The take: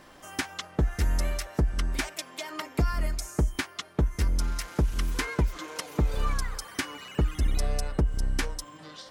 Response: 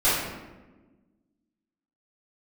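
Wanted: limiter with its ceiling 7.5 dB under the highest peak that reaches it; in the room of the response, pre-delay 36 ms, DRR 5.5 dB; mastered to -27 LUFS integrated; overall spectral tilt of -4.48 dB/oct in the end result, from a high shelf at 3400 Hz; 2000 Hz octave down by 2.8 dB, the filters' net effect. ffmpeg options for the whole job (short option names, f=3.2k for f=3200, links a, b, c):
-filter_complex "[0:a]equalizer=f=2k:t=o:g=-4.5,highshelf=f=3.4k:g=3.5,alimiter=limit=-22dB:level=0:latency=1,asplit=2[a][b];[1:a]atrim=start_sample=2205,adelay=36[c];[b][c]afir=irnorm=-1:irlink=0,volume=-22dB[d];[a][d]amix=inputs=2:normalize=0,volume=6.5dB"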